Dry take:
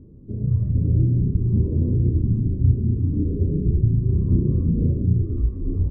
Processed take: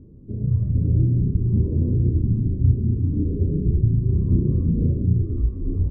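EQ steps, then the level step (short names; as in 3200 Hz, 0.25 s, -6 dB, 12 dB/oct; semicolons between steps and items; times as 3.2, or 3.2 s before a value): air absorption 220 m; 0.0 dB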